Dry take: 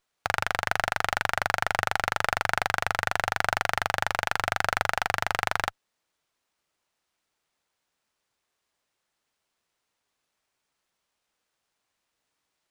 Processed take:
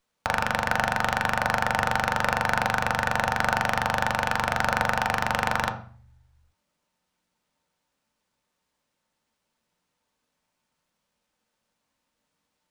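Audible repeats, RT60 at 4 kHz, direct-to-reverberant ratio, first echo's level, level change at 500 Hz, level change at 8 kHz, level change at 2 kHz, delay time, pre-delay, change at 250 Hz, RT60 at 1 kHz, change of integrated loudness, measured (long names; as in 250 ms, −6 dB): no echo audible, 0.40 s, 2.5 dB, no echo audible, +3.0 dB, 0.0 dB, +1.5 dB, no echo audible, 3 ms, +10.5 dB, 0.45 s, +2.0 dB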